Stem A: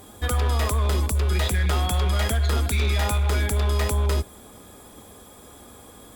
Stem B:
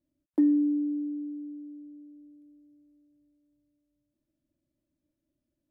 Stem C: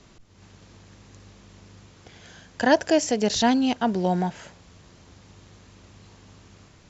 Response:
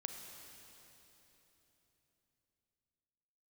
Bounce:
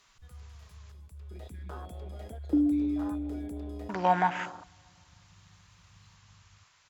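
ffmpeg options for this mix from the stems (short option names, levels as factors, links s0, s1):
-filter_complex "[0:a]volume=0.224[s0];[1:a]adelay=2150,volume=1[s1];[2:a]firequalizer=gain_entry='entry(100,0);entry(260,-12);entry(1000,11)':delay=0.05:min_phase=1,volume=0.708,asplit=3[s2][s3][s4];[s2]atrim=end=0.92,asetpts=PTS-STARTPTS,afade=t=out:st=0.916:d=0.004:c=hsin[s5];[s3]atrim=start=0.92:end=3.89,asetpts=PTS-STARTPTS,volume=0[s6];[s4]atrim=start=3.89,asetpts=PTS-STARTPTS,afade=t=in:d=0.004:c=hsin[s7];[s5][s6][s7]concat=n=3:v=0:a=1,asplit=3[s8][s9][s10];[s9]volume=0.631[s11];[s10]apad=whole_len=271328[s12];[s0][s12]sidechaincompress=threshold=0.00251:ratio=4:attack=8.8:release=954[s13];[3:a]atrim=start_sample=2205[s14];[s11][s14]afir=irnorm=-1:irlink=0[s15];[s13][s1][s8][s15]amix=inputs=4:normalize=0,afwtdn=0.0158,lowshelf=f=180:g=-8.5"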